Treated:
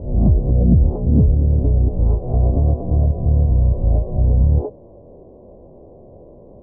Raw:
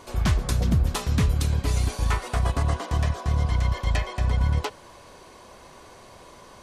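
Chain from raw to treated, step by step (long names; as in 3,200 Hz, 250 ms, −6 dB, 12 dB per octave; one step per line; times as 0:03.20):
peak hold with a rise ahead of every peak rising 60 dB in 0.56 s
Butterworth low-pass 630 Hz 36 dB per octave
level +7 dB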